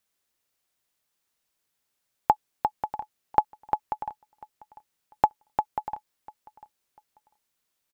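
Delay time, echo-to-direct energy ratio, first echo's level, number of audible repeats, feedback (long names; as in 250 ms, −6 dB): 695 ms, −20.5 dB, −21.0 dB, 2, 27%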